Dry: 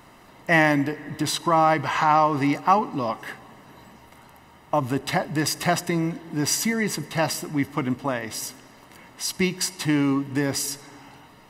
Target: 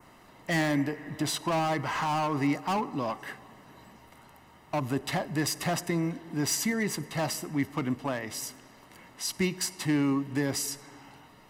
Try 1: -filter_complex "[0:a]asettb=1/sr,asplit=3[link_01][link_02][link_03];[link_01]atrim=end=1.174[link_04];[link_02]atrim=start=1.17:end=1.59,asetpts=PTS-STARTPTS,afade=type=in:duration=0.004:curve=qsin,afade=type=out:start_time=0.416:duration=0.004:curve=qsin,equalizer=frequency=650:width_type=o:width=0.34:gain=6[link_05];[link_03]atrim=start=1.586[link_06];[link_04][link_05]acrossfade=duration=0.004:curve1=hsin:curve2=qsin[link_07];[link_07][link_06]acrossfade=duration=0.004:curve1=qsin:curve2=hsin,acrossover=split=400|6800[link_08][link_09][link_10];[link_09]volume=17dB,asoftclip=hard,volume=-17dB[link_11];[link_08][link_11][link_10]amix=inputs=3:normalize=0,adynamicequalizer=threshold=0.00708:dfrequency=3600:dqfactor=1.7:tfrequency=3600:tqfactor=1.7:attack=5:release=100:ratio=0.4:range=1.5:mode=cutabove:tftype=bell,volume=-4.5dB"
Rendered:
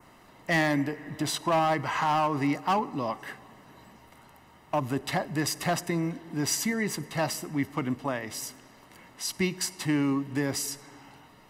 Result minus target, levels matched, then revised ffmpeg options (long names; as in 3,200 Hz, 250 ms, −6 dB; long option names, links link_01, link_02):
gain into a clipping stage and back: distortion −5 dB
-filter_complex "[0:a]asettb=1/sr,asplit=3[link_01][link_02][link_03];[link_01]atrim=end=1.174[link_04];[link_02]atrim=start=1.17:end=1.59,asetpts=PTS-STARTPTS,afade=type=in:duration=0.004:curve=qsin,afade=type=out:start_time=0.416:duration=0.004:curve=qsin,equalizer=frequency=650:width_type=o:width=0.34:gain=6[link_05];[link_03]atrim=start=1.586[link_06];[link_04][link_05]acrossfade=duration=0.004:curve1=hsin:curve2=qsin[link_07];[link_07][link_06]acrossfade=duration=0.004:curve1=qsin:curve2=hsin,acrossover=split=400|6800[link_08][link_09][link_10];[link_09]volume=23dB,asoftclip=hard,volume=-23dB[link_11];[link_08][link_11][link_10]amix=inputs=3:normalize=0,adynamicequalizer=threshold=0.00708:dfrequency=3600:dqfactor=1.7:tfrequency=3600:tqfactor=1.7:attack=5:release=100:ratio=0.4:range=1.5:mode=cutabove:tftype=bell,volume=-4.5dB"